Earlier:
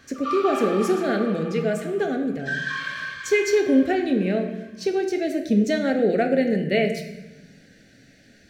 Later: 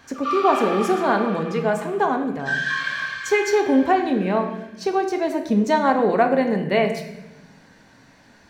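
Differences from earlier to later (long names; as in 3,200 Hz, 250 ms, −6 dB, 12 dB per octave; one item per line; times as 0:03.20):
speech: remove Butterworth band-reject 1,000 Hz, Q 0.99
background: send on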